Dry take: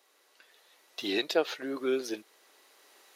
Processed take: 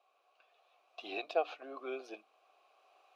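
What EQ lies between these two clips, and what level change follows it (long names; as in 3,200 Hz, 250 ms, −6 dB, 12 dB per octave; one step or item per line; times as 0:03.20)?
formant filter a
high-pass filter 130 Hz
mains-hum notches 60/120/180/240/300 Hz
+5.5 dB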